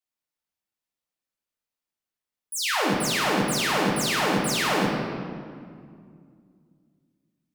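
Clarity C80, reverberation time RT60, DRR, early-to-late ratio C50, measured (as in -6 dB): 2.5 dB, 2.2 s, -2.5 dB, 1.0 dB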